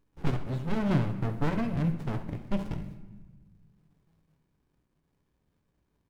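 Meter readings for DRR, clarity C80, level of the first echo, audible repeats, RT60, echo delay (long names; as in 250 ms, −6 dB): 6.0 dB, 12.0 dB, −13.5 dB, 2, 1.2 s, 67 ms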